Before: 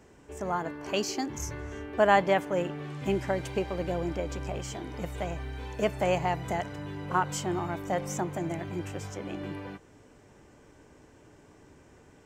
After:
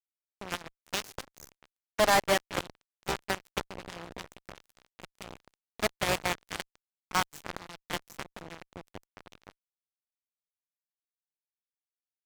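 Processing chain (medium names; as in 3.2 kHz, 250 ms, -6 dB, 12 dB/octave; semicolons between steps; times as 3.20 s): Chebyshev shaper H 2 -30 dB, 3 -18 dB, 4 -20 dB, 7 -19 dB, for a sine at -7.5 dBFS; fuzz box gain 41 dB, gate -45 dBFS; trim -4 dB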